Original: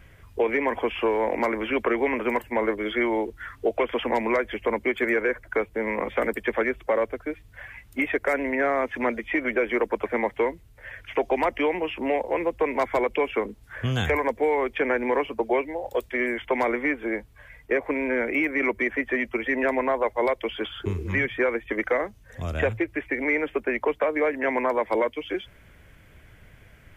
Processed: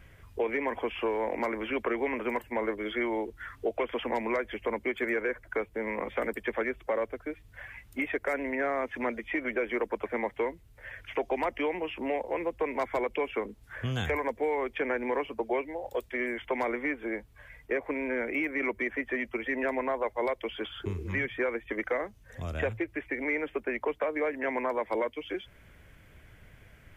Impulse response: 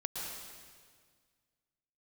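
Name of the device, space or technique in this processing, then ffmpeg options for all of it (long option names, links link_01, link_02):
parallel compression: -filter_complex "[0:a]asplit=2[link_01][link_02];[link_02]acompressor=threshold=-36dB:ratio=6,volume=-3.5dB[link_03];[link_01][link_03]amix=inputs=2:normalize=0,volume=-7.5dB"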